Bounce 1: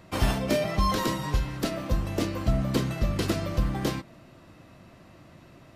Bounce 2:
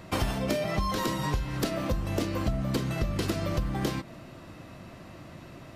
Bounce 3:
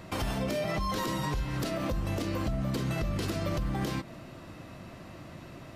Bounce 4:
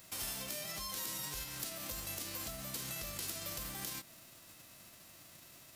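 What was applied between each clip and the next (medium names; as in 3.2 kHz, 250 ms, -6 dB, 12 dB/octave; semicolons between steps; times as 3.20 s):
compression 6:1, threshold -31 dBFS, peak gain reduction 12.5 dB; trim +5.5 dB
peak limiter -22.5 dBFS, peak gain reduction 7.5 dB
formants flattened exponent 0.6; pre-emphasis filter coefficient 0.8; trim -3.5 dB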